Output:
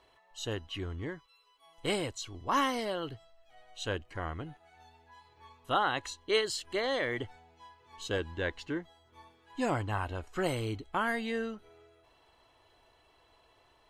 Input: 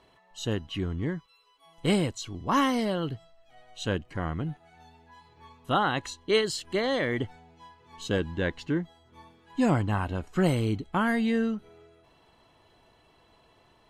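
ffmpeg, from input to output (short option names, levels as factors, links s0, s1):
-af "equalizer=f=180:t=o:w=1.2:g=-12.5,volume=0.75"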